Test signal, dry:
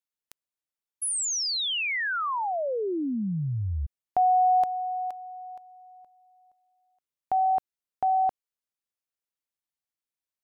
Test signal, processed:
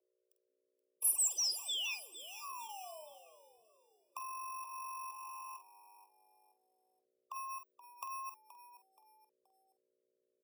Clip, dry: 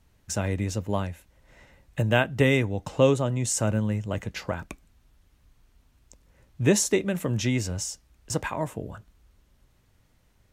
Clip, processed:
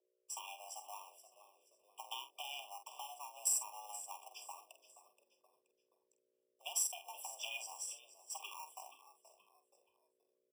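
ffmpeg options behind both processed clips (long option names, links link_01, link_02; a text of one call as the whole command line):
ffmpeg -i in.wav -filter_complex "[0:a]agate=range=-14dB:threshold=-51dB:ratio=16:release=270:detection=peak,bandreject=frequency=560:width=18,afwtdn=0.0178,highpass=frequency=440:width=0.5412,highpass=frequency=440:width=1.3066,asplit=2[link_01][link_02];[link_02]acrusher=samples=29:mix=1:aa=0.000001,volume=-10dB[link_03];[link_01][link_03]amix=inputs=2:normalize=0,acompressor=threshold=-35dB:ratio=16:attack=8.2:release=230:knee=1:detection=peak,aeval=exprs='val(0)+0.000562*(sin(2*PI*60*n/s)+sin(2*PI*2*60*n/s)/2+sin(2*PI*3*60*n/s)/3+sin(2*PI*4*60*n/s)/4+sin(2*PI*5*60*n/s)/5)':channel_layout=same,afreqshift=310,aderivative,asplit=2[link_04][link_05];[link_05]adelay=47,volume=-9.5dB[link_06];[link_04][link_06]amix=inputs=2:normalize=0,asplit=4[link_07][link_08][link_09][link_10];[link_08]adelay=476,afreqshift=-100,volume=-15dB[link_11];[link_09]adelay=952,afreqshift=-200,volume=-23.9dB[link_12];[link_10]adelay=1428,afreqshift=-300,volume=-32.7dB[link_13];[link_07][link_11][link_12][link_13]amix=inputs=4:normalize=0,afftfilt=real='re*eq(mod(floor(b*sr/1024/1200),2),0)':imag='im*eq(mod(floor(b*sr/1024/1200),2),0)':win_size=1024:overlap=0.75,volume=7.5dB" out.wav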